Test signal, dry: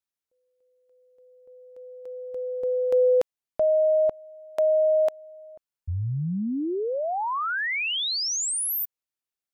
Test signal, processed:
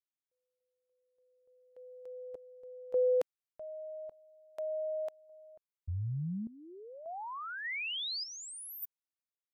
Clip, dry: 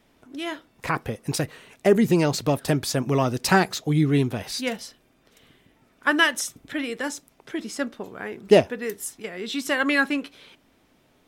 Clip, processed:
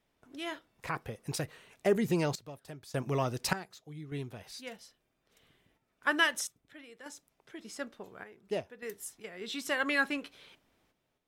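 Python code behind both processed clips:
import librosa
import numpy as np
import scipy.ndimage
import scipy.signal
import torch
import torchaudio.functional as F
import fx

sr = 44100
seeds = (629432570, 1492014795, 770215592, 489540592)

y = fx.gate_hold(x, sr, open_db=-40.0, close_db=-44.0, hold_ms=387.0, range_db=-8, attack_ms=0.16, release_ms=22.0)
y = fx.peak_eq(y, sr, hz=260.0, db=-5.0, octaves=0.71)
y = fx.tremolo_random(y, sr, seeds[0], hz=1.7, depth_pct=85)
y = y * 10.0 ** (-6.5 / 20.0)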